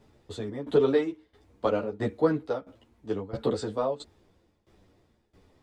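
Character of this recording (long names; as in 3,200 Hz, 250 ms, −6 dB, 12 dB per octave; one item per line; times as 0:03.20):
tremolo saw down 1.5 Hz, depth 90%
a shimmering, thickened sound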